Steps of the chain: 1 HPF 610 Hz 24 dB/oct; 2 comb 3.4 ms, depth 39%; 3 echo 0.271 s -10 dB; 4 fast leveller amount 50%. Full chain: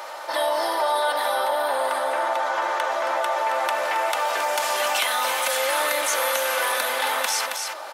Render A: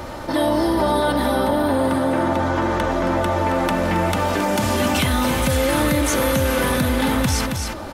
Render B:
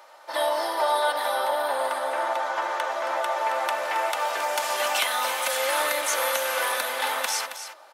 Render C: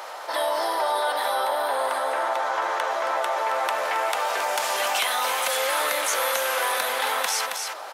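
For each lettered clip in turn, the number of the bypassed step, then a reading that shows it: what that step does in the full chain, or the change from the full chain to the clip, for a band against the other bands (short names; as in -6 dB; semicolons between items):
1, 250 Hz band +25.5 dB; 4, crest factor change +1.5 dB; 2, loudness change -1.5 LU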